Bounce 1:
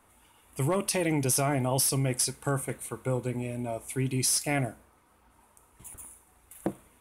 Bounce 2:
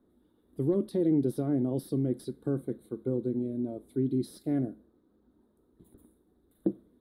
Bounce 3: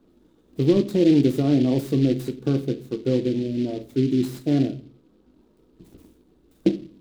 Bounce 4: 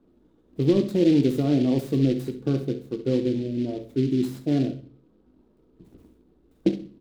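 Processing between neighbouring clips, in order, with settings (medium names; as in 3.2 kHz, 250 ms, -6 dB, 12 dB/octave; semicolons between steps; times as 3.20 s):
FFT filter 110 Hz 0 dB, 220 Hz +12 dB, 360 Hz +13 dB, 890 Hz -12 dB, 1.7 kHz -10 dB, 2.6 kHz -28 dB, 3.8 kHz -1 dB, 6.1 kHz -28 dB, 14 kHz -12 dB; trim -8 dB
reverberation RT60 0.35 s, pre-delay 6 ms, DRR 8 dB; delay time shaken by noise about 3.1 kHz, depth 0.032 ms; trim +8 dB
feedback delay 67 ms, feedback 28%, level -12 dB; tape noise reduction on one side only decoder only; trim -2 dB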